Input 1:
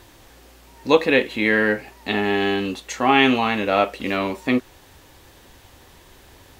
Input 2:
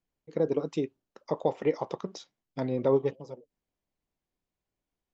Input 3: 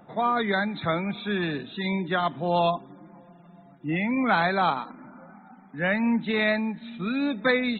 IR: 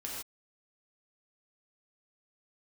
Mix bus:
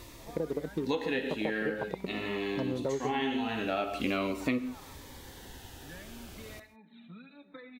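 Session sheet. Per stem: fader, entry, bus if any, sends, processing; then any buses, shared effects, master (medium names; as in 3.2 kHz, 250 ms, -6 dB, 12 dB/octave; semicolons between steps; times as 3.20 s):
0.0 dB, 0.00 s, send -12.5 dB, Shepard-style phaser falling 0.44 Hz; auto duck -18 dB, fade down 1.90 s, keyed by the second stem
+1.0 dB, 0.00 s, no send, local Wiener filter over 41 samples; compression 2:1, threshold -30 dBFS, peak gain reduction 6.5 dB
-13.5 dB, 0.10 s, send -10 dB, compression 16:1, threshold -32 dBFS, peak gain reduction 15.5 dB; cancelling through-zero flanger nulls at 0.38 Hz, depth 7.5 ms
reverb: on, pre-delay 3 ms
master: compression 5:1, threshold -28 dBFS, peak gain reduction 12 dB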